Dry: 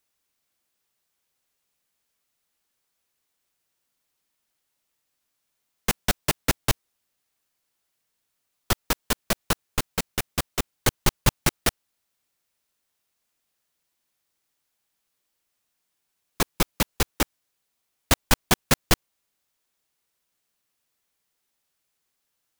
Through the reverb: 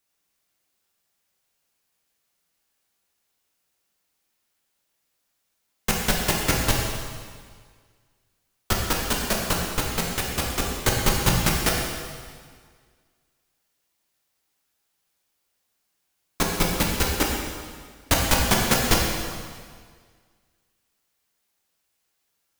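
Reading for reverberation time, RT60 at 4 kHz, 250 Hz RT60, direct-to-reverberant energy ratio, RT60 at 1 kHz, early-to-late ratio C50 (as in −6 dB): 1.8 s, 1.7 s, 1.8 s, −2.0 dB, 1.8 s, 1.0 dB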